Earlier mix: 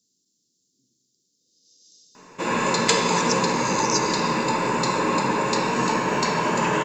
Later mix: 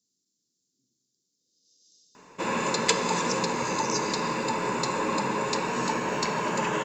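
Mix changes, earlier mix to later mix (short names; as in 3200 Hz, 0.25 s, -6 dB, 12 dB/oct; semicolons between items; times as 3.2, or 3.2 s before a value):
speech -7.0 dB; background: send -11.0 dB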